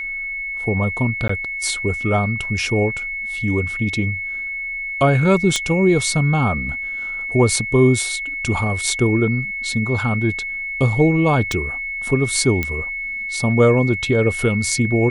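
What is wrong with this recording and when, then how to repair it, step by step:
whine 2.2 kHz -24 dBFS
1.28–1.29 s: dropout 14 ms
5.56 s: pop -5 dBFS
11.52 s: pop
12.63 s: pop -8 dBFS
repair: de-click; band-stop 2.2 kHz, Q 30; interpolate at 1.28 s, 14 ms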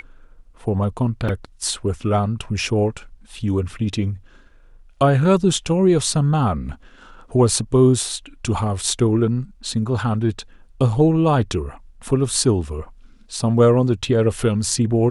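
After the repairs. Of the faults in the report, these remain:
nothing left

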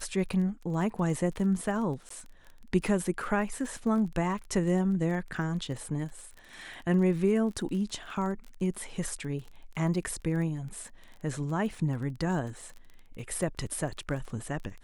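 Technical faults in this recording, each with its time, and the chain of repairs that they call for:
crackle 26 per s -38 dBFS
2.09–2.10 s: dropout 14 ms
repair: de-click; interpolate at 2.09 s, 14 ms

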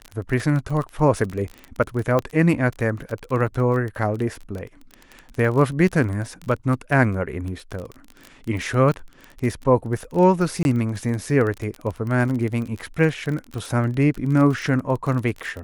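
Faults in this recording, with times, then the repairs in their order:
crackle 24 per s -26 dBFS
2.19 s: pop -10 dBFS
10.63–10.65 s: dropout 21 ms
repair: de-click; interpolate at 10.63 s, 21 ms

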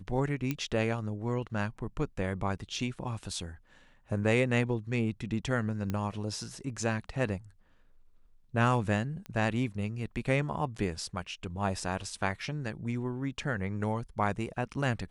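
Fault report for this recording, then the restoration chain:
0.51 s: pop -17 dBFS
5.90 s: pop -20 dBFS
9.26 s: pop -27 dBFS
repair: de-click

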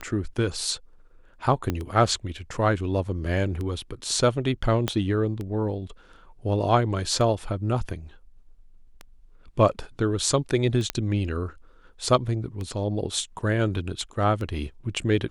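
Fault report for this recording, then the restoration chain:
tick 33 1/3 rpm -21 dBFS
1.70 s: pop -13 dBFS
4.88 s: pop -9 dBFS
10.90 s: pop -9 dBFS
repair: de-click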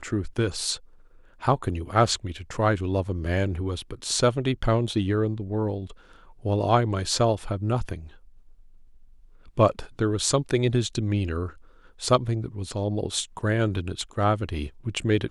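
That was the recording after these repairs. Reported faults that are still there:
1.70 s: pop
4.88 s: pop

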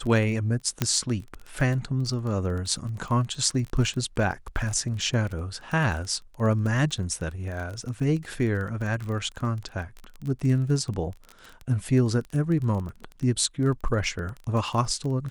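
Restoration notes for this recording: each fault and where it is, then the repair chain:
crackle 23 per s -31 dBFS
0.82 s: pop -8 dBFS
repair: de-click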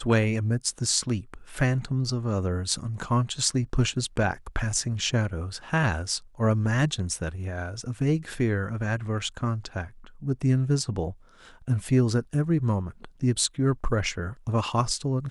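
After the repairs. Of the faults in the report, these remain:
nothing left

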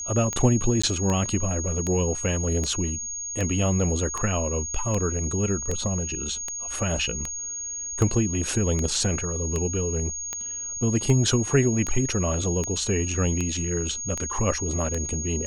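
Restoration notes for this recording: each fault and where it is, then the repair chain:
tick 78 rpm -14 dBFS
whine 6.6 kHz -30 dBFS
0.82–0.83 s: dropout 15 ms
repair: de-click; band-stop 6.6 kHz, Q 30; interpolate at 0.82 s, 15 ms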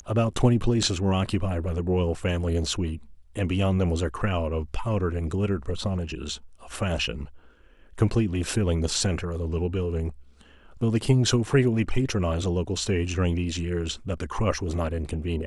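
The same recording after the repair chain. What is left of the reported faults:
nothing left

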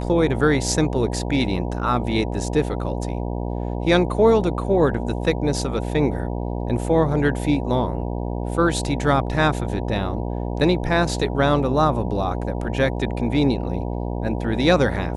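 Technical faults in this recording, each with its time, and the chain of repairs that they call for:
buzz 60 Hz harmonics 16 -26 dBFS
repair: de-hum 60 Hz, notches 16

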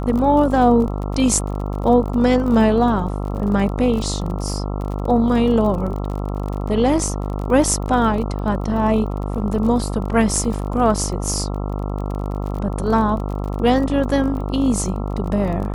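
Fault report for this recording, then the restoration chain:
buzz 50 Hz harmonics 27 -24 dBFS
crackle 31 per s -27 dBFS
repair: de-click; de-hum 50 Hz, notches 27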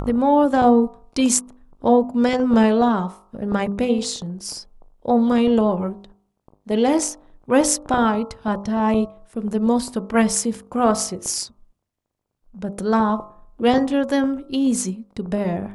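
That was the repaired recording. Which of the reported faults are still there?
nothing left

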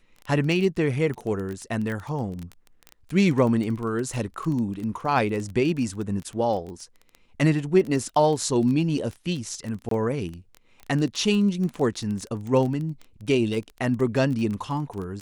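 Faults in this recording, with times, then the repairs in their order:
crackle 20 per s -29 dBFS
1.92 s: pop -22 dBFS
9.89–9.91 s: dropout 23 ms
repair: de-click; interpolate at 9.89 s, 23 ms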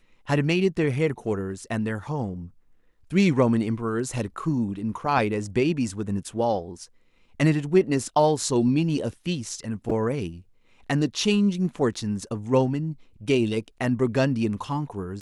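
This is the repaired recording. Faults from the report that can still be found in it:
nothing left

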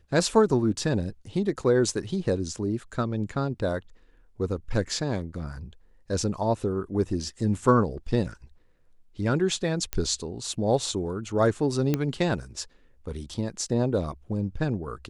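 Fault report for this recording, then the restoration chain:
9.93 s: pop -12 dBFS
11.94 s: pop -11 dBFS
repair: de-click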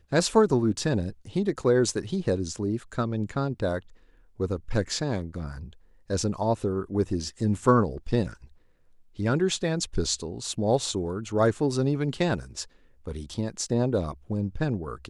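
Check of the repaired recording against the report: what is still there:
nothing left

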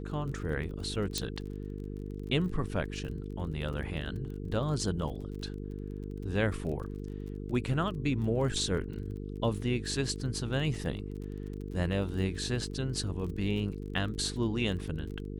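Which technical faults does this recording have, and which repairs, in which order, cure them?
buzz 50 Hz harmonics 9 -39 dBFS
crackle 28 per s -40 dBFS
1.18 s: pop -16 dBFS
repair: de-click; de-hum 50 Hz, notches 9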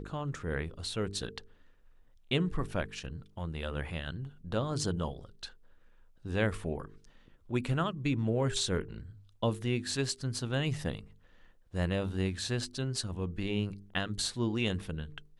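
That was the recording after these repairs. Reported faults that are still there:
1.18 s: pop

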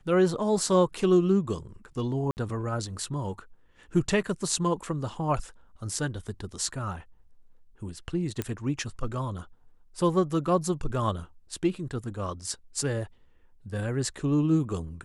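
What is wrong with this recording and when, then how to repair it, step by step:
2.31–2.37 s: dropout 59 ms
8.42 s: pop -15 dBFS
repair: de-click; interpolate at 2.31 s, 59 ms

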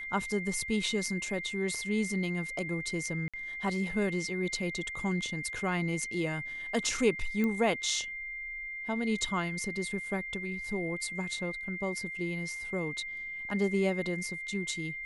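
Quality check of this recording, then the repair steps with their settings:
whine 2.1 kHz -37 dBFS
3.28–3.34 s: dropout 56 ms
7.44 s: pop -20 dBFS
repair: de-click; band-stop 2.1 kHz, Q 30; interpolate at 3.28 s, 56 ms

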